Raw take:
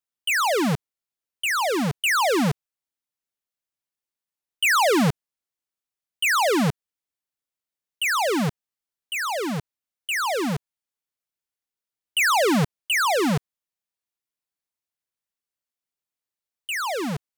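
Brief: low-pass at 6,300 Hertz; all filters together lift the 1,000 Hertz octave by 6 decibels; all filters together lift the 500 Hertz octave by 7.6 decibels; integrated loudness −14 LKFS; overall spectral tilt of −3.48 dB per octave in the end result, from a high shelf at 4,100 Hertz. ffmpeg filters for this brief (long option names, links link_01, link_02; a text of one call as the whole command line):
ffmpeg -i in.wav -af "lowpass=6300,equalizer=frequency=500:width_type=o:gain=8,equalizer=frequency=1000:width_type=o:gain=5.5,highshelf=frequency=4100:gain=-6.5,volume=5dB" out.wav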